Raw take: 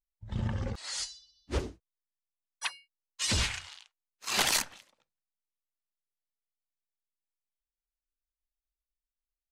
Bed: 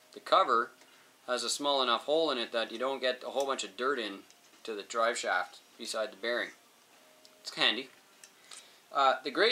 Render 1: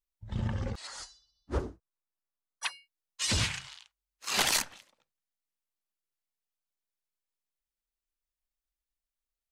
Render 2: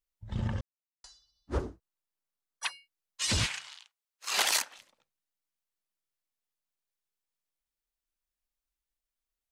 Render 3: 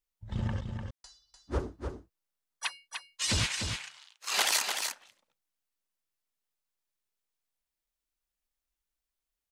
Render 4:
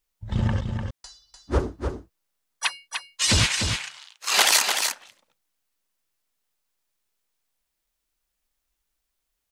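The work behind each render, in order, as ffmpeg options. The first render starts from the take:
-filter_complex "[0:a]asettb=1/sr,asplit=3[a][b][c];[a]atrim=end=0.874[d];[b]atrim=start=0.87:end=2.63,asetpts=PTS-STARTPTS,afade=t=in:d=0.004:c=qsin,afade=t=out:st=1.756:d=0.004:c=qsin,highshelf=f=1.8k:t=q:w=1.5:g=-8.5[e];[c]atrim=start=2.626[f];[d][e]acrossfade=d=0.004:c1=hsin:c2=qsin[g];[g][f]acrossfade=d=0.004:c1=qsin:c2=hsin,asettb=1/sr,asplit=3[h][i][j];[h]atrim=end=3.394[k];[i]atrim=start=3.39:end=4.34,asetpts=PTS-STARTPTS,afade=t=in:d=0.004:c=qsin,afade=t=out:st=0.946:d=0.004:c=qsin,afreqshift=47[l];[j]atrim=start=4.336[m];[k][l]acrossfade=d=0.004:c1=hsin:c2=qsin[n];[n][m]acrossfade=d=0.004:c1=qsin:c2=hsin"
-filter_complex "[0:a]asettb=1/sr,asplit=3[a][b][c];[a]atrim=end=3.464[d];[b]atrim=start=3.46:end=4.78,asetpts=PTS-STARTPTS,afade=t=in:d=0.004:c=qsin,afade=t=out:st=1.316:d=0.004:c=qsin,highpass=460[e];[c]atrim=start=4.776[f];[d][e]acrossfade=d=0.004:c1=hsin:c2=qsin[g];[g][f]acrossfade=d=0.004:c1=qsin:c2=hsin,asplit=3[h][i][j];[h]atrim=end=0.61,asetpts=PTS-STARTPTS,afade=t=out:st=0.606:d=0.004:c=hsin[k];[i]atrim=start=0.61:end=1.04,asetpts=PTS-STARTPTS,volume=0[l];[j]atrim=start=1.04,asetpts=PTS-STARTPTS,afade=t=in:d=0.004:c=hsin[m];[k][l][m]concat=n=3:v=0:a=1"
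-af "aecho=1:1:298:0.501"
-af "volume=9dB"

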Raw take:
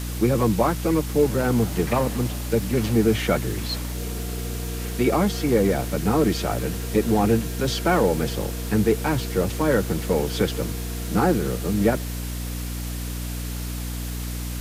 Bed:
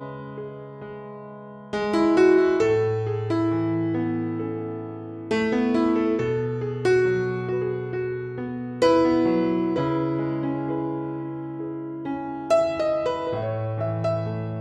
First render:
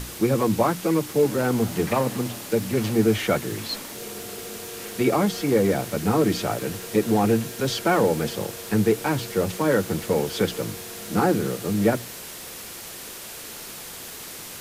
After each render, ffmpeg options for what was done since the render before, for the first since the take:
-af "bandreject=f=60:t=h:w=6,bandreject=f=120:t=h:w=6,bandreject=f=180:t=h:w=6,bandreject=f=240:t=h:w=6,bandreject=f=300:t=h:w=6"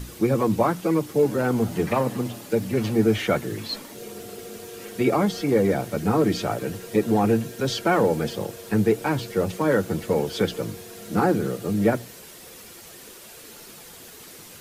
-af "afftdn=nr=8:nf=-38"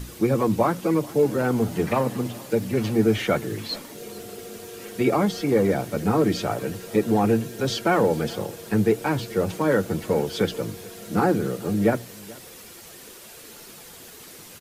-af "aecho=1:1:432:0.075"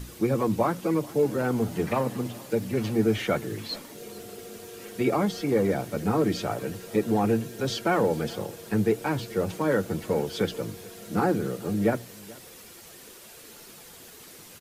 -af "volume=-3.5dB"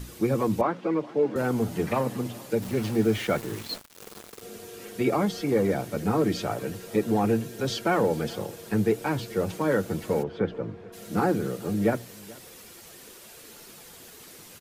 -filter_complex "[0:a]asettb=1/sr,asplit=3[a][b][c];[a]atrim=end=0.614[d];[b]atrim=start=0.61:end=1.36,asetpts=PTS-STARTPTS,afade=t=in:d=0.004:c=qsin,afade=t=out:st=0.746:d=0.004:c=qsin,highpass=220,lowpass=2.9k[e];[c]atrim=start=1.356[f];[d][e]acrossfade=d=0.004:c1=hsin:c2=qsin[g];[g][f]acrossfade=d=0.004:c1=qsin:c2=hsin,asettb=1/sr,asplit=3[h][i][j];[h]atrim=end=2.624[k];[i]atrim=start=2.62:end=4.42,asetpts=PTS-STARTPTS,afade=t=in:d=0.004:c=qsin,afade=t=out:st=1.796:d=0.004:c=qsin,aeval=exprs='val(0)*gte(abs(val(0)),0.015)':c=same[l];[j]atrim=start=4.416[m];[k][l]acrossfade=d=0.004:c1=hsin:c2=qsin[n];[n][m]acrossfade=d=0.004:c1=qsin:c2=hsin,asplit=3[o][p][q];[o]afade=t=out:st=10.22:d=0.02[r];[p]lowpass=1.6k,afade=t=in:st=10.22:d=0.02,afade=t=out:st=10.92:d=0.02[s];[q]afade=t=in:st=10.92:d=0.02[t];[r][s][t]amix=inputs=3:normalize=0"

